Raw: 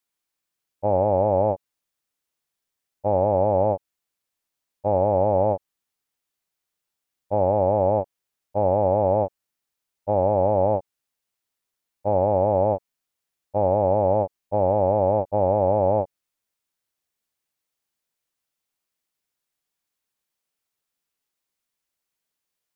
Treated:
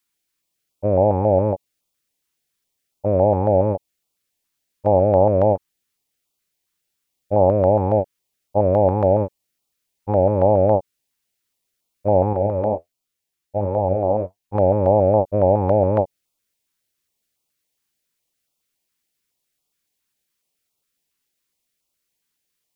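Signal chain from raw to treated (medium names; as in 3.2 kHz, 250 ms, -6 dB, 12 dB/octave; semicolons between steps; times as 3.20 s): 12.33–14.55 s: flange 1.4 Hz, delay 7.5 ms, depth 7 ms, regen +50%; step-sequenced notch 7.2 Hz 620–1700 Hz; trim +6.5 dB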